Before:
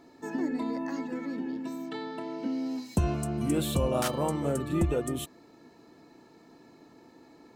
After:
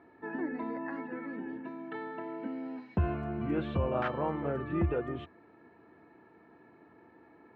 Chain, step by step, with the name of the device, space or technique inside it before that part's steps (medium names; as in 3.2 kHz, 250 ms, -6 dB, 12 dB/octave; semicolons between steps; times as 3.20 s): bass cabinet (cabinet simulation 81–2400 Hz, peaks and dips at 84 Hz +6 dB, 150 Hz -5 dB, 260 Hz -6 dB, 550 Hz -3 dB, 1.6 kHz +5 dB); trim -1.5 dB